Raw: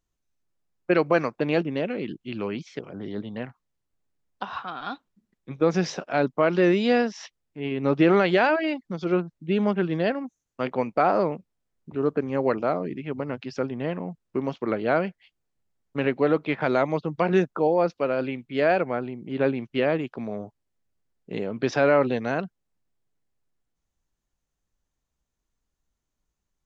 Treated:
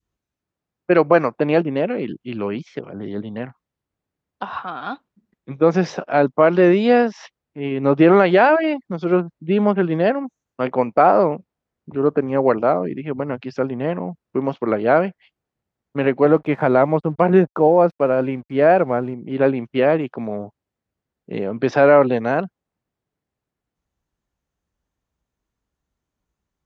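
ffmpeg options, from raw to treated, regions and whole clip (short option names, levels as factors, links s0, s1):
-filter_complex "[0:a]asettb=1/sr,asplit=3[s0][s1][s2];[s0]atrim=end=16.254[s3];[s1]atrim=start=16.25:end=19.14,asetpts=PTS-STARTPTS,afade=t=in:d=0.004:c=qsin,afade=t=out:st=2.886:d=0.004:c=qsin,lowpass=f=2300:p=1,aeval=exprs='sgn(val(0))*max(abs(val(0))-0.002,0)':c=same,lowshelf=f=170:g=6[s4];[s2]atrim=start=19.136[s5];[s3][s4]acrossfade=d=0.004:c1=hsin:c2=qsin[s6];[s6][s5]acrossfade=d=0.004:c1=qsin:c2=hsin,adynamicequalizer=threshold=0.0282:dfrequency=790:dqfactor=0.77:tfrequency=790:tqfactor=0.77:attack=5:release=100:ratio=0.375:range=2:mode=boostabove:tftype=bell,highpass=51,highshelf=f=3900:g=-11,volume=1.78"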